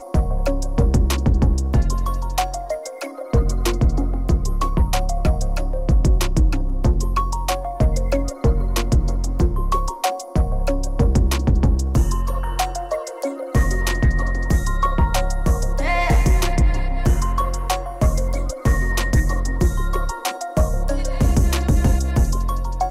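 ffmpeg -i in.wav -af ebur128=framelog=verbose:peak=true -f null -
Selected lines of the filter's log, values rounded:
Integrated loudness:
  I:         -21.2 LUFS
  Threshold: -31.2 LUFS
Loudness range:
  LRA:         1.7 LU
  Threshold: -41.3 LUFS
  LRA low:   -22.0 LUFS
  LRA high:  -20.3 LUFS
True peak:
  Peak:       -8.0 dBFS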